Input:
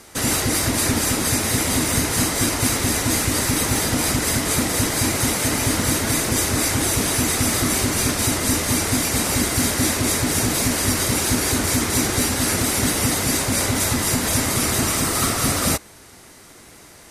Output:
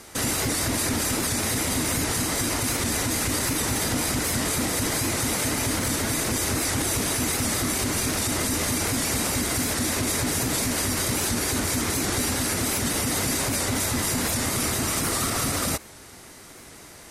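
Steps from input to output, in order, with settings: limiter -16 dBFS, peak gain reduction 9.5 dB; record warp 78 rpm, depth 100 cents

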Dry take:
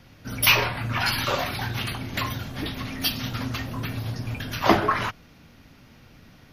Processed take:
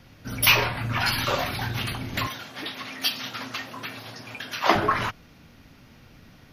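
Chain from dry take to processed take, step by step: 2.27–4.75 weighting filter A

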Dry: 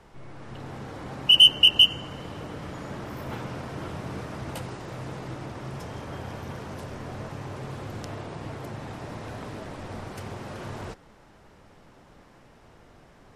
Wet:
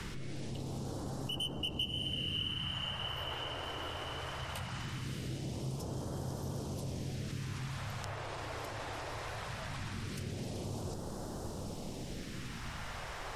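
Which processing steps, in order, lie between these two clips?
in parallel at +1.5 dB: negative-ratio compressor -47 dBFS, ratio -1; on the sum: diffused feedback echo 0.618 s, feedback 46%, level -8 dB; phaser stages 2, 0.2 Hz, lowest notch 170–2200 Hz; three-band squash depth 70%; gain -7 dB

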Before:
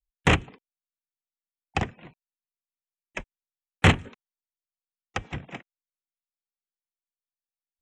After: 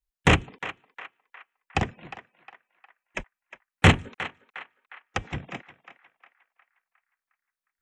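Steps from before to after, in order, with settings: narrowing echo 0.358 s, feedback 51%, band-pass 1500 Hz, level -11.5 dB; gain +1.5 dB

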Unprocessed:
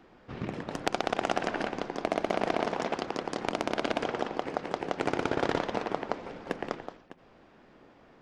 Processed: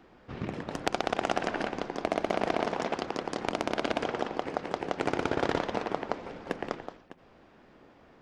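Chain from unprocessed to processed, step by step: bell 74 Hz +4.5 dB 0.42 oct

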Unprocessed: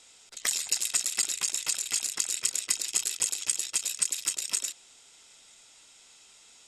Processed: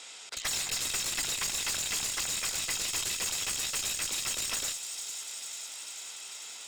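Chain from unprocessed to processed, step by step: overdrive pedal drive 26 dB, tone 4000 Hz, clips at -10 dBFS; thin delay 0.445 s, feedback 75%, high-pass 4700 Hz, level -8.5 dB; one-sided clip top -26.5 dBFS; gain -7 dB

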